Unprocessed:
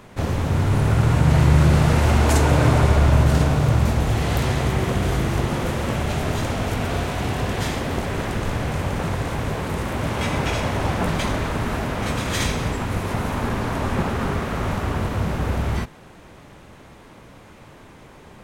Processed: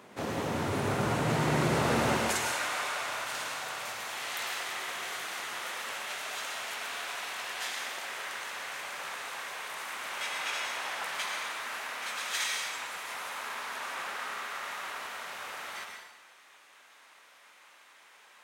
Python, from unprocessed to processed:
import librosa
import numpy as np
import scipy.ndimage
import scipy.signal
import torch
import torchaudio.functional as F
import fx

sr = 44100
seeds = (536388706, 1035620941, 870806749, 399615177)

y = fx.highpass(x, sr, hz=fx.steps((0.0, 250.0), (2.17, 1300.0)), slope=12)
y = fx.rev_plate(y, sr, seeds[0], rt60_s=0.95, hf_ratio=0.95, predelay_ms=90, drr_db=2.0)
y = F.gain(torch.from_numpy(y), -6.0).numpy()